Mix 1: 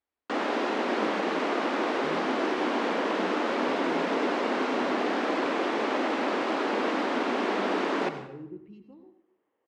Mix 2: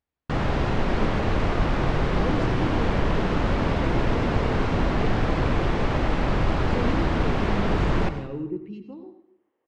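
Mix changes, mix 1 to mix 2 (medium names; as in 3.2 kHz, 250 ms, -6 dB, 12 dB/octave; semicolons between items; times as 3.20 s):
speech +11.0 dB; first sound: remove steep high-pass 240 Hz 48 dB/octave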